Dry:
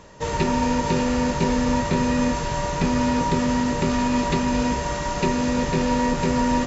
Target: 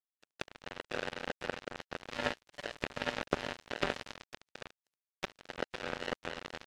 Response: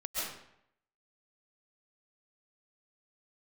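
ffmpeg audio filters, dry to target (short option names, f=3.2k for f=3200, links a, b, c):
-filter_complex "[0:a]asplit=3[a][b][c];[a]bandpass=f=530:t=q:w=8,volume=0dB[d];[b]bandpass=f=1.84k:t=q:w=8,volume=-6dB[e];[c]bandpass=f=2.48k:t=q:w=8,volume=-9dB[f];[d][e][f]amix=inputs=3:normalize=0,asplit=3[g][h][i];[g]afade=t=out:st=2.14:d=0.02[j];[h]aecho=1:1:7:0.88,afade=t=in:st=2.14:d=0.02,afade=t=out:st=4.12:d=0.02[k];[i]afade=t=in:st=4.12:d=0.02[l];[j][k][l]amix=inputs=3:normalize=0,acrusher=bits=3:mix=0:aa=0.5,volume=8dB" -ar 44100 -c:a libvorbis -b:a 96k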